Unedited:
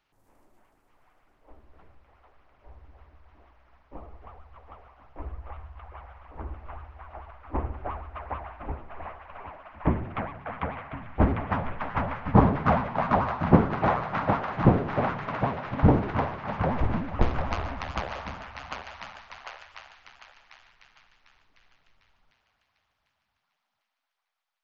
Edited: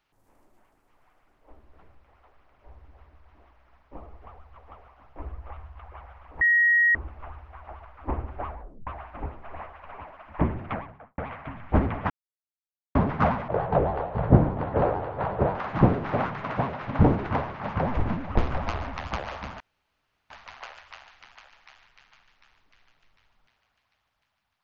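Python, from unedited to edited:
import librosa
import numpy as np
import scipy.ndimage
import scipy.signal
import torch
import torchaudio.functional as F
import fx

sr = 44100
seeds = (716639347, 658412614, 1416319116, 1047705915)

y = fx.studio_fade_out(x, sr, start_s=10.2, length_s=0.44)
y = fx.edit(y, sr, fx.insert_tone(at_s=6.41, length_s=0.54, hz=1890.0, db=-16.5),
    fx.tape_stop(start_s=7.97, length_s=0.36),
    fx.silence(start_s=11.56, length_s=0.85),
    fx.speed_span(start_s=12.94, length_s=1.45, speed=0.7),
    fx.room_tone_fill(start_s=18.44, length_s=0.7), tone=tone)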